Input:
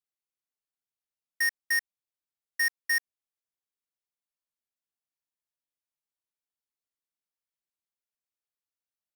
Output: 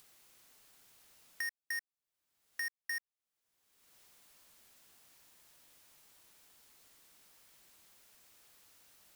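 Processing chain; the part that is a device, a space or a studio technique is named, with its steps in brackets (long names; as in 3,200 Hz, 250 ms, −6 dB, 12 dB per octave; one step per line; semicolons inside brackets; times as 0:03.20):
upward and downward compression (upward compression, threshold −44 dBFS; downward compressor 4 to 1, threshold −43 dBFS, peak gain reduction 14 dB)
level +2 dB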